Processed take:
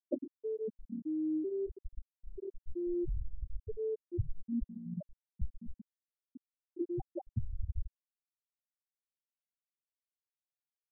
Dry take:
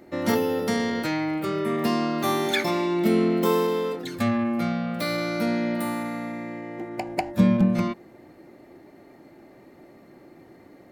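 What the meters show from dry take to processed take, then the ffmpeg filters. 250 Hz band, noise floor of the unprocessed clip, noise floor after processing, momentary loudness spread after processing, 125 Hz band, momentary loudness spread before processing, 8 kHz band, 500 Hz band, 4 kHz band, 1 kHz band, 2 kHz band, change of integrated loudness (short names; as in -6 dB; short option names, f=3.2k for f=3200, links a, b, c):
-16.0 dB, -51 dBFS, under -85 dBFS, 17 LU, -13.0 dB, 10 LU, under -40 dB, -14.5 dB, under -40 dB, -33.5 dB, under -40 dB, -15.0 dB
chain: -af "aeval=exprs='(mod(7.94*val(0)+1,2)-1)/7.94':c=same,asubboost=boost=6.5:cutoff=83,acompressor=threshold=-35dB:ratio=10,afftfilt=real='re*gte(hypot(re,im),0.1)':imag='im*gte(hypot(re,im),0.1)':win_size=1024:overlap=0.75,volume=8.5dB"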